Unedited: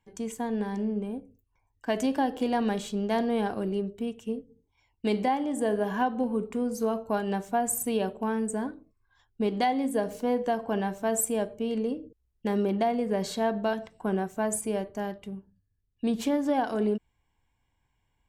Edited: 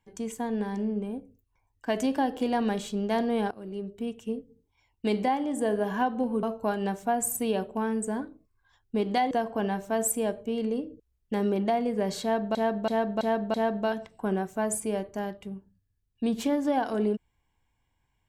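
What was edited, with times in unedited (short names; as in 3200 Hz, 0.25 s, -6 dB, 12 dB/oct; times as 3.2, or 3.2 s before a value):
3.51–4.11 fade in, from -18 dB
6.43–6.89 cut
9.77–10.44 cut
13.35–13.68 loop, 5 plays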